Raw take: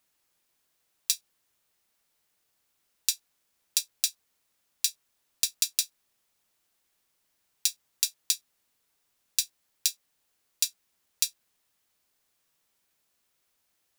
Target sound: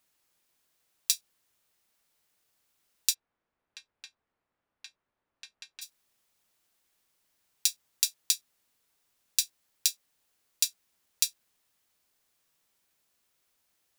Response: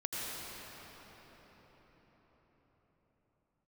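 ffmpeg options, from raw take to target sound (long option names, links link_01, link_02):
-filter_complex "[0:a]asplit=3[link_01][link_02][link_03];[link_01]afade=type=out:start_time=3.13:duration=0.02[link_04];[link_02]lowpass=1500,afade=type=in:start_time=3.13:duration=0.02,afade=type=out:start_time=5.81:duration=0.02[link_05];[link_03]afade=type=in:start_time=5.81:duration=0.02[link_06];[link_04][link_05][link_06]amix=inputs=3:normalize=0"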